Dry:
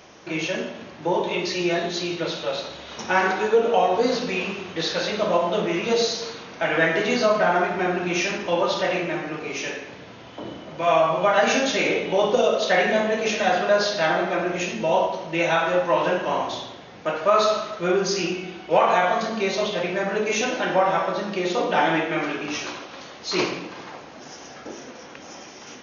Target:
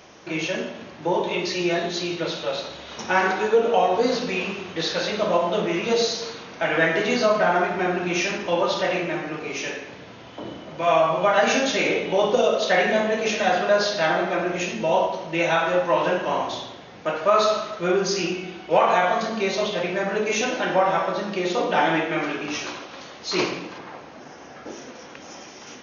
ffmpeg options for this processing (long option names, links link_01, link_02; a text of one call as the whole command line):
ffmpeg -i in.wav -filter_complex "[0:a]asettb=1/sr,asplit=3[link_01][link_02][link_03];[link_01]atrim=end=23.784[link_04];[link_02]atrim=start=23.78:end=24.67,asetpts=PTS-STARTPTS,afade=type=in:duration=0.004:curve=qsin,afade=type=out:start_time=0.886:duration=0.004:curve=qsin,acrossover=split=2600[link_05][link_06];[link_06]acompressor=threshold=-54dB:ratio=4:attack=1:release=60[link_07];[link_05][link_07]amix=inputs=2:normalize=0[link_08];[link_03]atrim=start=24.666[link_09];[link_04][link_08]acrossfade=duration=0.004:curve1=hsin:curve2=qsin[link_10];[link_10][link_09]acrossfade=duration=0.004:curve1=qsin:curve2=hsin" out.wav